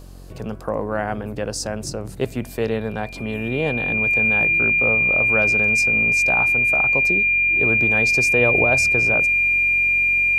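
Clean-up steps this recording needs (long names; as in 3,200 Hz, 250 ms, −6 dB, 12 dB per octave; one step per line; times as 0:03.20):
hum removal 45.4 Hz, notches 13
notch filter 2,400 Hz, Q 30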